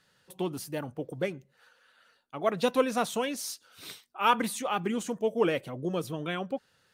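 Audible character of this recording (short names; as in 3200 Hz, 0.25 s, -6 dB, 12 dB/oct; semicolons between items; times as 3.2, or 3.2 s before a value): noise floor -69 dBFS; spectral tilt -4.5 dB/oct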